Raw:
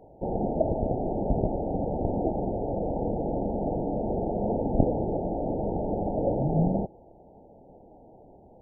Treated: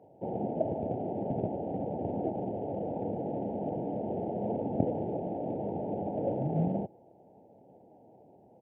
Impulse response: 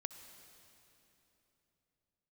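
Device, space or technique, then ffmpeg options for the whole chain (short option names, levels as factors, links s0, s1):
Bluetooth headset: -af "highpass=f=100:w=0.5412,highpass=f=100:w=1.3066,aresample=8000,aresample=44100,volume=0.562" -ar 48000 -c:a sbc -b:a 64k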